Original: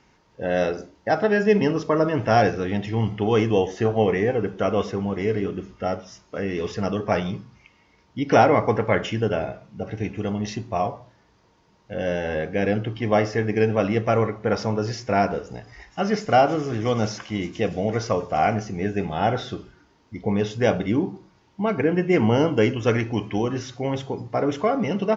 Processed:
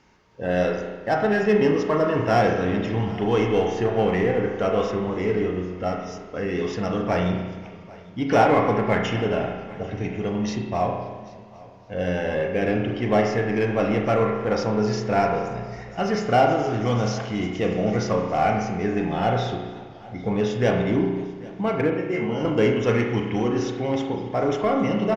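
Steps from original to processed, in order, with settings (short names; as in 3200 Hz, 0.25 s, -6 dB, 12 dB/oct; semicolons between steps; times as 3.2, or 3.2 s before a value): 21.9–22.45 resonator 76 Hz, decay 0.31 s, harmonics all, mix 90%; in parallel at -6 dB: hard clip -22 dBFS, distortion -7 dB; on the sum: echo 0.791 s -22 dB; spring tank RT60 1.3 s, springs 33 ms, chirp 55 ms, DRR 2 dB; warbling echo 0.27 s, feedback 69%, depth 137 cents, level -23 dB; gain -4 dB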